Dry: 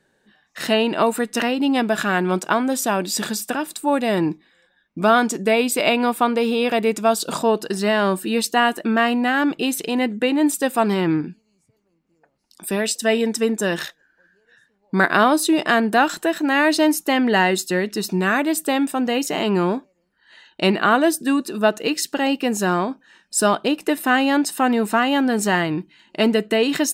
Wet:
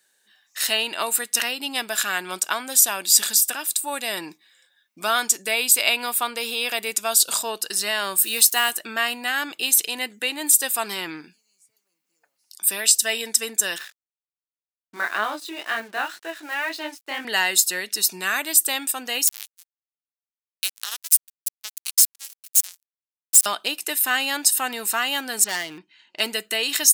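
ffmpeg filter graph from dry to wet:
-filter_complex "[0:a]asettb=1/sr,asplit=3[a][b][c];[a]atrim=end=8.184[d];[b]atrim=start=8.18:end=8.71,asetpts=PTS-STARTPTS,afade=t=in:d=0.004:c=qsin,afade=t=out:st=0.526:d=0.004:c=qsin,highshelf=f=8k:g=9.5,acrusher=bits=6:mix=0:aa=0.5[e];[c]atrim=start=8.706[f];[d][e]acrossfade=d=0.004:c1=hsin:c2=qsin[g];[g][f]acrossfade=d=0.004:c1=qsin:c2=hsin,asettb=1/sr,asplit=3[h][i][j];[h]atrim=end=13.784[k];[i]atrim=start=13.78:end=17.25,asetpts=PTS-STARTPTS,afade=t=in:d=0.004:c=qsin,afade=t=out:st=3.466:d=0.004:c=qsin,highpass=140,lowpass=2.4k,flanger=delay=18:depth=6.4:speed=2,aeval=exprs='sgn(val(0))*max(abs(val(0))-0.00398,0)':c=same[l];[j]atrim=start=17.246[m];[k][l]acrossfade=d=0.004:c1=hsin:c2=qsin[n];[n][m]acrossfade=d=0.004:c1=qsin:c2=hsin,asettb=1/sr,asplit=3[o][p][q];[o]atrim=end=19.274[r];[p]atrim=start=19.27:end=23.46,asetpts=PTS-STARTPTS,afade=t=in:d=0.004:c=qsin,afade=t=out:st=4.186:d=0.004:c=qsin,aderivative,aecho=1:1:2.4:0.49,atrim=end_sample=184779,acrusher=bits=3:mix=0:aa=0.5[s];[q]atrim=start=23.456[t];[r][s]acrossfade=d=0.004:c1=hsin:c2=qsin[u];[u][t]acrossfade=d=0.004:c1=qsin:c2=hsin,asettb=1/sr,asplit=3[v][w][x];[v]atrim=end=25.444[y];[w]atrim=start=25.44:end=26.2,asetpts=PTS-STARTPTS,afade=t=in:d=0.004:c=qsin,afade=t=out:st=0.756:d=0.004:c=qsin,lowpass=6.3k,aemphasis=mode=reproduction:type=75fm,asoftclip=type=hard:threshold=-17dB[z];[x]atrim=start=26.196[aa];[y][z]acrossfade=d=0.004:c1=hsin:c2=qsin[ab];[ab][aa]acrossfade=d=0.004:c1=qsin:c2=hsin,aderivative,alimiter=level_in=11dB:limit=-1dB:release=50:level=0:latency=1,volume=-1dB"

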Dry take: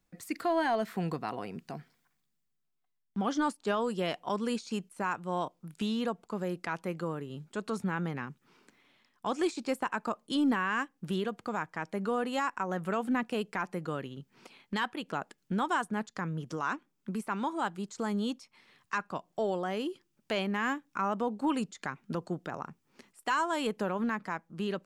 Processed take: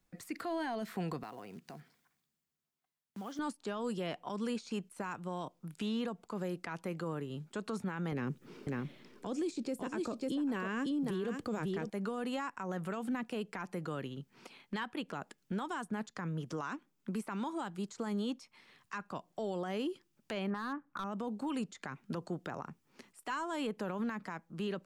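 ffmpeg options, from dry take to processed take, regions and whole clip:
-filter_complex "[0:a]asettb=1/sr,asplit=3[a][b][c];[a]atrim=end=1.234[d];[b]atrim=start=1.23:end=3.39,asetpts=PTS-STARTPTS,afade=t=in:d=0.004:c=qsin,afade=t=out:st=2.156:d=0.004:c=qsin,highpass=f=77:p=1,acompressor=threshold=-50dB:ratio=2:attack=3.2:release=140:knee=1:detection=peak,acrusher=bits=5:mode=log:mix=0:aa=0.000001[e];[c]atrim=start=3.386[f];[d][e]acrossfade=d=0.004:c1=hsin:c2=qsin[g];[g][f]acrossfade=d=0.004:c1=qsin:c2=hsin,asettb=1/sr,asplit=3[h][i][j];[h]atrim=end=8.124[k];[i]atrim=start=8.12:end=11.9,asetpts=PTS-STARTPTS,afade=t=in:d=0.004:c=qsin,afade=t=out:st=3.776:d=0.004:c=qsin,lowshelf=f=660:t=q:w=1.5:g=8,acontrast=50,aecho=1:1:547:0.355,atrim=end_sample=166698[l];[j]atrim=start=11.896[m];[k][l]acrossfade=d=0.004:c1=hsin:c2=qsin[n];[n][m]acrossfade=d=0.004:c1=qsin:c2=hsin,asettb=1/sr,asplit=3[o][p][q];[o]atrim=end=20.504[r];[p]atrim=start=20.5:end=21.04,asetpts=PTS-STARTPTS,afade=t=in:d=0.004:c=qsin,afade=t=out:st=0.536:d=0.004:c=qsin,lowpass=f=1.3k:t=q:w=2.6,volume=22dB,asoftclip=hard,volume=-22dB[s];[q]atrim=start=21.036[t];[r][s]acrossfade=d=0.004:c1=hsin:c2=qsin[u];[u][t]acrossfade=d=0.004:c1=qsin:c2=hsin,acrossover=split=300|3000[v][w][x];[v]acompressor=threshold=-36dB:ratio=4[y];[w]acompressor=threshold=-35dB:ratio=4[z];[x]acompressor=threshold=-51dB:ratio=4[aa];[y][z][aa]amix=inputs=3:normalize=0,alimiter=level_in=5dB:limit=-24dB:level=0:latency=1:release=26,volume=-5dB"

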